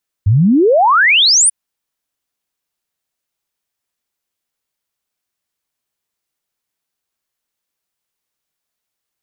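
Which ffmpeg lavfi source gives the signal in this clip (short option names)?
-f lavfi -i "aevalsrc='0.447*clip(min(t,1.24-t)/0.01,0,1)*sin(2*PI*92*1.24/log(10000/92)*(exp(log(10000/92)*t/1.24)-1))':d=1.24:s=44100"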